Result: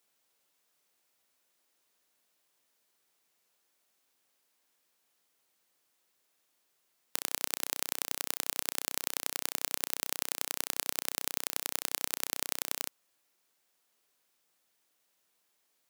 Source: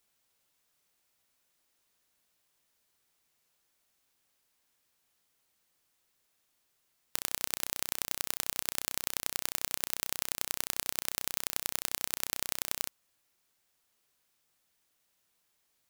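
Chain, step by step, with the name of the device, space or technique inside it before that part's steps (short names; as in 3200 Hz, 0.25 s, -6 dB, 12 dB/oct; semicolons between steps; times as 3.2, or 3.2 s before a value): filter by subtraction (in parallel: LPF 380 Hz 12 dB/oct + phase invert)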